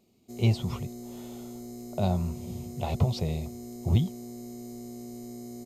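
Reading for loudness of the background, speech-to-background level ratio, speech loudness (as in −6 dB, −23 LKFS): −42.0 LKFS, 12.0 dB, −30.0 LKFS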